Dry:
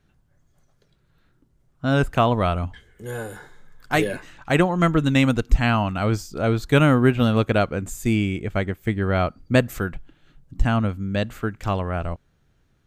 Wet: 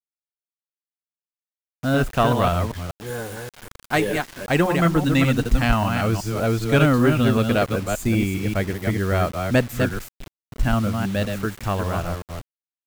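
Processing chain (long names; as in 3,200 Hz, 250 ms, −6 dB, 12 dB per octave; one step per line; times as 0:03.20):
delay that plays each chunk backwards 194 ms, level −5 dB
harmonic generator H 5 −24 dB, 6 −24 dB, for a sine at −1 dBFS
bit reduction 6 bits
level −2 dB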